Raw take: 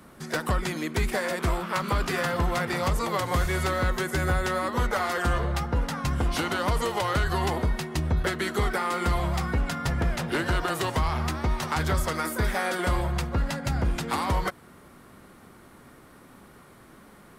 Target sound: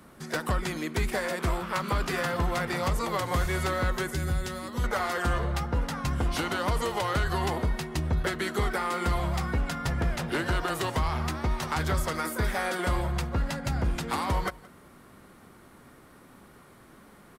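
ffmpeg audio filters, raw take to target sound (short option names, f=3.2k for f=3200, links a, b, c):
-filter_complex "[0:a]asettb=1/sr,asplit=3[a][b][c];[a]atrim=end=4.084[d];[b]atrim=start=4.08:end=4.84,asetpts=PTS-STARTPTS,afade=t=in:d=0.004:c=qsin,afade=t=out:st=0.756:d=0.004:c=qsin,acrossover=split=290|3000[e][f][g];[f]acompressor=threshold=-40dB:ratio=3[h];[e][h][g]amix=inputs=3:normalize=0[i];[c]atrim=start=4.836[j];[d][i]acrossfade=d=0.004:c1=hsin:c2=qsin[k];[k][j]acrossfade=d=0.004:c1=qsin:c2=hsin,asplit=2[l][m];[m]aecho=0:1:173:0.075[n];[l][n]amix=inputs=2:normalize=0,volume=-2dB"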